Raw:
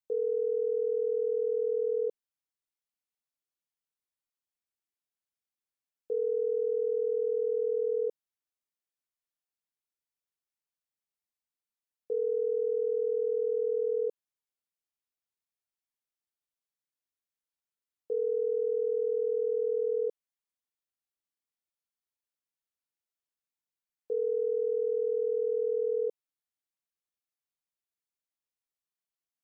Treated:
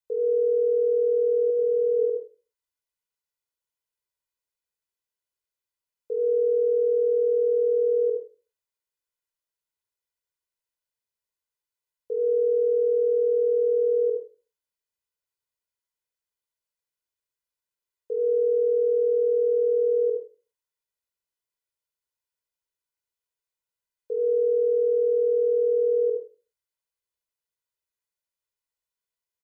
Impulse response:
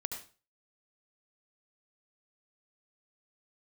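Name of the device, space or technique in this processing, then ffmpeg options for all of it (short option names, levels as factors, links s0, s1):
microphone above a desk: -filter_complex "[0:a]asettb=1/sr,asplit=3[s0][s1][s2];[s0]atrim=end=1.504[s3];[s1]atrim=start=1.5:end=1.99,asetpts=PTS-STARTPTS,afade=t=in:d=0.004:c=qsin,afade=t=out:st=0.486:d=0.004:c=qsin,highpass=280[s4];[s2]atrim=start=1.986[s5];[s3][s4]acrossfade=d=0.004:c1=hsin:c2=qsin[s6];[s6][s5]acrossfade=d=0.004:c1=qsin:c2=hsin,aecho=1:1:2:0.65[s7];[1:a]atrim=start_sample=2205[s8];[s7][s8]afir=irnorm=-1:irlink=0"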